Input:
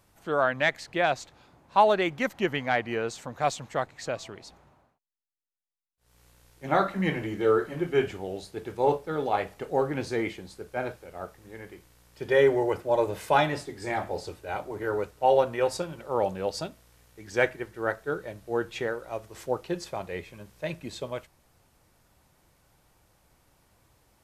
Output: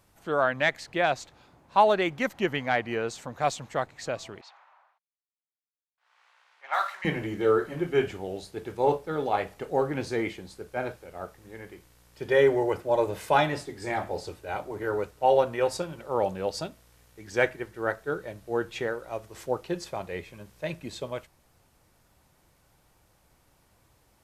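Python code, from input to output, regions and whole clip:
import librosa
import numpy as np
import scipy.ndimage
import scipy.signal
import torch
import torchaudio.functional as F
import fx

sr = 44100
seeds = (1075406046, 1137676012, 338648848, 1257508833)

y = fx.chain(x, sr, fx.law_mismatch(coded='mu'),
    fx.highpass(hz=860.0, slope=24),
    fx.env_lowpass(base_hz=2200.0, full_db=-25.5), at=(4.41, 7.05))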